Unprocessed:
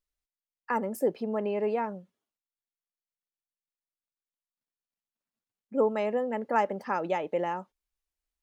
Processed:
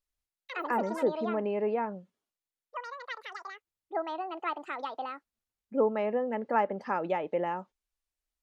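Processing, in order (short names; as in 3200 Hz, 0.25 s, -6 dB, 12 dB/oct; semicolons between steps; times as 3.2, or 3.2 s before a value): treble ducked by the level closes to 2700 Hz, closed at -24.5 dBFS; echoes that change speed 92 ms, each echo +7 st, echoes 2, each echo -6 dB; gain -1 dB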